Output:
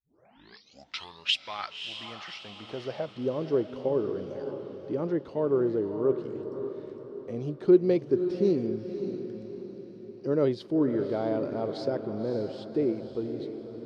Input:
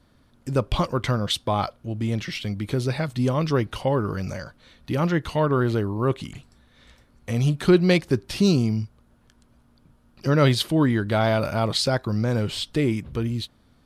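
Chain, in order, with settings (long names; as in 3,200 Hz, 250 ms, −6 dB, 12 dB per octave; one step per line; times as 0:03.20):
turntable start at the beginning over 1.49 s
parametric band 5,100 Hz +10.5 dB 0.88 octaves
reversed playback
upward compression, threshold −31 dBFS
reversed playback
band-pass filter sweep 5,800 Hz → 400 Hz, 0:00.34–0:03.40
feedback delay with all-pass diffusion 576 ms, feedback 47%, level −8.5 dB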